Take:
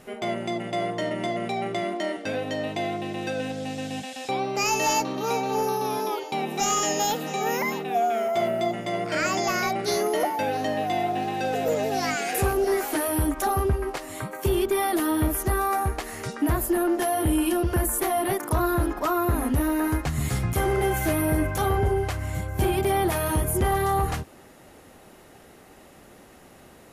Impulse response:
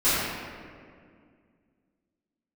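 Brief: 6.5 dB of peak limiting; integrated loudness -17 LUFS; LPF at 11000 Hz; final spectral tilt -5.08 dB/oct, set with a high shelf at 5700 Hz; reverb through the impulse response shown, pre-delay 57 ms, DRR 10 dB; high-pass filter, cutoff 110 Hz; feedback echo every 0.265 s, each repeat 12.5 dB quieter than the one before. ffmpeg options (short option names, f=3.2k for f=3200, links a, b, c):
-filter_complex "[0:a]highpass=110,lowpass=11k,highshelf=f=5.7k:g=-7.5,alimiter=limit=-19.5dB:level=0:latency=1,aecho=1:1:265|530|795:0.237|0.0569|0.0137,asplit=2[a][b];[1:a]atrim=start_sample=2205,adelay=57[c];[b][c]afir=irnorm=-1:irlink=0,volume=-27dB[d];[a][d]amix=inputs=2:normalize=0,volume=11dB"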